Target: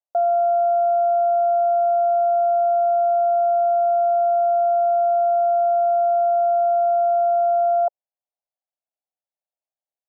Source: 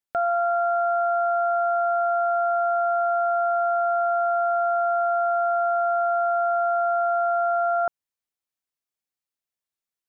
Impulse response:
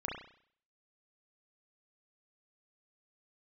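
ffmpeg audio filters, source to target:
-af "acontrast=89,asuperpass=centerf=670:order=4:qfactor=2.4,volume=-1.5dB"

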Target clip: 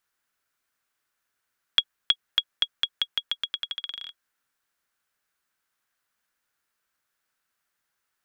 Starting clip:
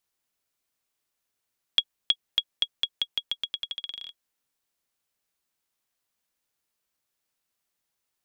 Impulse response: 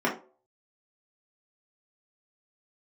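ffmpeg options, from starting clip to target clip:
-af "equalizer=f=1.5k:t=o:w=0.88:g=11.5"

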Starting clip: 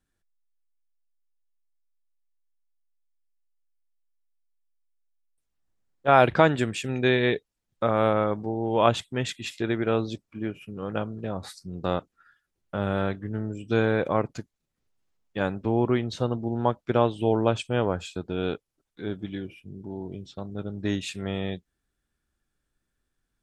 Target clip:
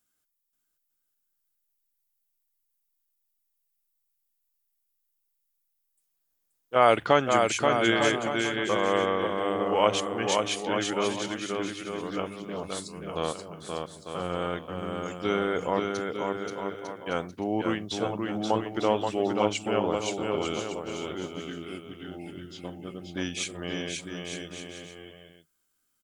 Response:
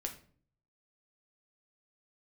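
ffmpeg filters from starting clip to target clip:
-af "asetrate=39690,aresample=44100,aemphasis=mode=production:type=bsi,bandreject=f=50:t=h:w=6,bandreject=f=100:t=h:w=6,aecho=1:1:530|901|1161|1342|1470:0.631|0.398|0.251|0.158|0.1,volume=-1.5dB"

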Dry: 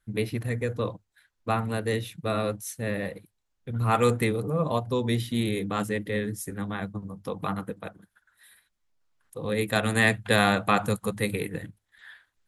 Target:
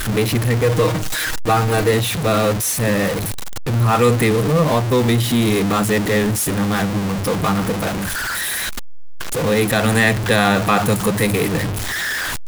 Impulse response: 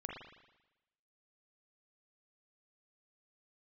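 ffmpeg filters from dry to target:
-filter_complex "[0:a]aeval=exprs='val(0)+0.5*0.0596*sgn(val(0))':c=same,asettb=1/sr,asplit=3[a][b][c];[a]atrim=end=0.634[d];[b]atrim=start=0.63:end=1.91,asetpts=PTS-STARTPTS,afade=t=in:d=0.004:c=qsin,afade=t=out:st=1.276:d=0.004:c=qsin,aecho=1:1:6.4:0.67,atrim=end_sample=56448[e];[c]atrim=start=1.906[f];[d][e]acrossfade=d=0.004:c1=hsin:c2=qsin[g];[g][f]acrossfade=d=0.004:c1=qsin:c2=hsin,asplit=2[h][i];[i]alimiter=limit=-15.5dB:level=0:latency=1:release=69,volume=0dB[j];[h][j]amix=inputs=2:normalize=0,volume=1.5dB"

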